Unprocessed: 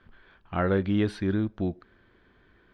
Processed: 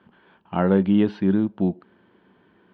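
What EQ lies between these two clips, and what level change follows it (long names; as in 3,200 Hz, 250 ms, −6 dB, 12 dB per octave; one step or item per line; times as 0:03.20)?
loudspeaker in its box 180–5,600 Hz, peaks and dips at 190 Hz +7 dB, 900 Hz +8 dB, 2,900 Hz +9 dB
tilt shelving filter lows +6 dB, about 1,200 Hz
0.0 dB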